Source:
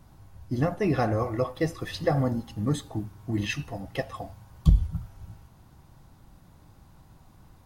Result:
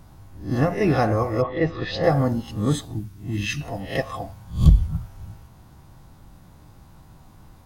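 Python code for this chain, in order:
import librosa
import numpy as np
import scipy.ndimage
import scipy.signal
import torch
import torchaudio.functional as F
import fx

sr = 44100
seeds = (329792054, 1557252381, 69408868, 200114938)

y = fx.spec_swells(x, sr, rise_s=0.36)
y = fx.lowpass(y, sr, hz=fx.line((1.41, 2400.0), (2.02, 5900.0)), slope=24, at=(1.41, 2.02), fade=0.02)
y = fx.peak_eq(y, sr, hz=680.0, db=-13.0, octaves=2.1, at=(2.85, 3.61))
y = F.gain(torch.from_numpy(y), 4.0).numpy()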